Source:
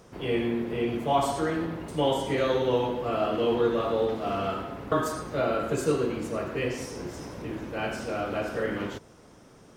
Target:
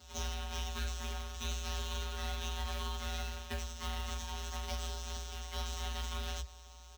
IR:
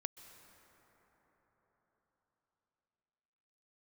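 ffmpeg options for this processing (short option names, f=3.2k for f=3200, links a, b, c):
-filter_complex "[0:a]aderivative,acompressor=threshold=-48dB:ratio=10,aresample=16000,aeval=exprs='abs(val(0))':c=same,aresample=44100,afftfilt=real='hypot(re,im)*cos(PI*b)':imag='0':win_size=1024:overlap=0.75,acrusher=bits=4:mode=log:mix=0:aa=0.000001,afreqshift=59,atempo=1.4,asplit=2[a][b];[b]adelay=12,volume=-3dB[c];[a][c]amix=inputs=2:normalize=0,asplit=2[d][e];[e]adelay=1633,volume=-16dB,highshelf=f=4k:g=-36.7[f];[d][f]amix=inputs=2:normalize=0,volume=15dB"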